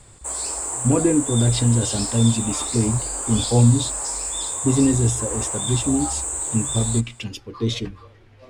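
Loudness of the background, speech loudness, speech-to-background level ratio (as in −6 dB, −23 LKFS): −24.5 LKFS, −21.5 LKFS, 3.0 dB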